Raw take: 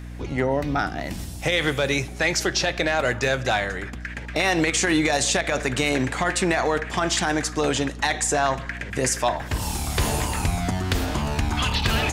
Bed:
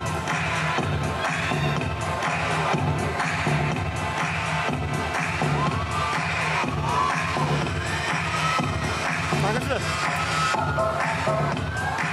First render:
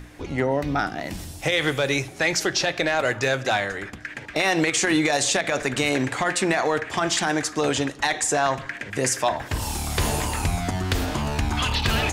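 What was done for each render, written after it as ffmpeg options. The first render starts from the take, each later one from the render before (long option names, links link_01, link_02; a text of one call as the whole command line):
ffmpeg -i in.wav -af "bandreject=frequency=60:width_type=h:width=6,bandreject=frequency=120:width_type=h:width=6,bandreject=frequency=180:width_type=h:width=6,bandreject=frequency=240:width_type=h:width=6" out.wav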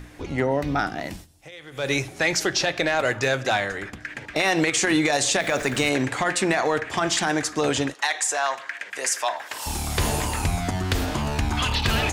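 ffmpeg -i in.wav -filter_complex "[0:a]asettb=1/sr,asplit=3[link_01][link_02][link_03];[link_01]atrim=end=5.404[link_04];[link_02]atrim=start=5.4:end=5.89,asetpts=PTS-STARTPTS,afade=type=in:duration=0.004:curve=qsin,afade=type=out:start_time=0.486:duration=0.004:curve=qsin,aeval=exprs='val(0)+0.5*0.0168*sgn(val(0))':channel_layout=same[link_05];[link_03]atrim=start=5.886[link_06];[link_04][link_05]acrossfade=duration=0.004:curve1=hsin:curve2=qsin[link_07];[link_07][link_06]acrossfade=duration=0.004:curve1=qsin:curve2=hsin,asettb=1/sr,asplit=3[link_08][link_09][link_10];[link_08]atrim=end=7.944[link_11];[link_09]atrim=start=7.94:end=9.66,asetpts=PTS-STARTPTS,afade=type=in:duration=0.004:curve=qsin,afade=type=out:start_time=1.716:duration=0.004:curve=qsin,highpass=750[link_12];[link_10]atrim=start=9.656[link_13];[link_11][link_12]acrossfade=duration=0.004:curve1=hsin:curve2=qsin[link_14];[link_14][link_13]acrossfade=duration=0.004:curve1=qsin:curve2=hsin,asplit=3[link_15][link_16][link_17];[link_15]atrim=end=1.27,asetpts=PTS-STARTPTS,afade=type=out:start_time=1.06:duration=0.21:silence=0.1[link_18];[link_16]atrim=start=1.27:end=1.71,asetpts=PTS-STARTPTS,volume=-20dB[link_19];[link_17]atrim=start=1.71,asetpts=PTS-STARTPTS,afade=type=in:duration=0.21:silence=0.1[link_20];[link_18][link_19][link_20]concat=n=3:v=0:a=1" out.wav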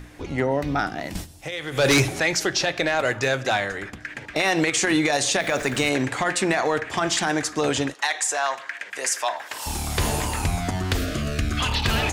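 ffmpeg -i in.wav -filter_complex "[0:a]asettb=1/sr,asplit=3[link_01][link_02][link_03];[link_01]atrim=end=1.154[link_04];[link_02]atrim=start=1.15:end=2.2,asetpts=PTS-STARTPTS,afade=type=in:duration=0.004:curve=qsin,afade=type=out:start_time=1.046:duration=0.004:curve=qsin,aeval=exprs='0.237*sin(PI/2*2.24*val(0)/0.237)':channel_layout=same[link_05];[link_03]atrim=start=2.196[link_06];[link_04][link_05]acrossfade=duration=0.004:curve1=hsin:curve2=qsin[link_07];[link_07][link_06]acrossfade=duration=0.004:curve1=qsin:curve2=hsin,asettb=1/sr,asplit=3[link_08][link_09][link_10];[link_08]atrim=end=5.014[link_11];[link_09]atrim=start=5.01:end=5.55,asetpts=PTS-STARTPTS,afade=type=in:duration=0.004:curve=qsin,afade=type=out:start_time=0.536:duration=0.004:curve=qsin,bandreject=frequency=7600:width=12[link_12];[link_10]atrim=start=5.546[link_13];[link_11][link_12]acrossfade=duration=0.004:curve1=hsin:curve2=qsin[link_14];[link_14][link_13]acrossfade=duration=0.004:curve1=qsin:curve2=hsin,asettb=1/sr,asplit=3[link_15][link_16][link_17];[link_15]atrim=end=10.974[link_18];[link_16]atrim=start=10.97:end=11.6,asetpts=PTS-STARTPTS,afade=type=in:duration=0.004:curve=qsin,afade=type=out:start_time=0.626:duration=0.004:curve=qsin,asuperstop=centerf=890:order=8:qfactor=2.1[link_19];[link_17]atrim=start=11.596[link_20];[link_18][link_19]acrossfade=duration=0.004:curve1=hsin:curve2=qsin[link_21];[link_21][link_20]acrossfade=duration=0.004:curve1=qsin:curve2=hsin" out.wav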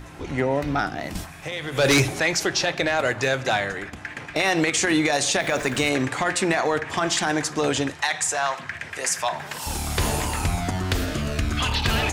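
ffmpeg -i in.wav -i bed.wav -filter_complex "[1:a]volume=-18dB[link_01];[0:a][link_01]amix=inputs=2:normalize=0" out.wav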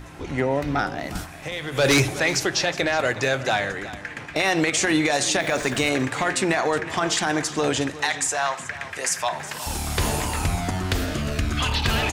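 ffmpeg -i in.wav -af "aecho=1:1:367:0.168" out.wav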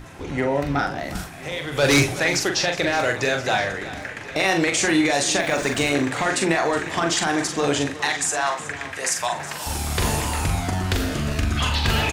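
ffmpeg -i in.wav -filter_complex "[0:a]asplit=2[link_01][link_02];[link_02]adelay=42,volume=-5.5dB[link_03];[link_01][link_03]amix=inputs=2:normalize=0,aecho=1:1:1024|2048|3072:0.112|0.0438|0.0171" out.wav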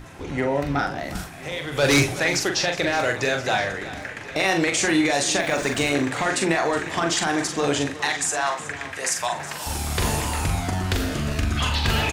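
ffmpeg -i in.wav -af "volume=-1dB" out.wav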